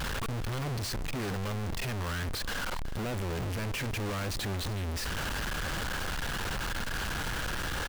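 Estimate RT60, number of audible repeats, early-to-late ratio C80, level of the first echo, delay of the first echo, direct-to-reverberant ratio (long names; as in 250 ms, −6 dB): no reverb audible, 1, no reverb audible, −16.0 dB, 373 ms, no reverb audible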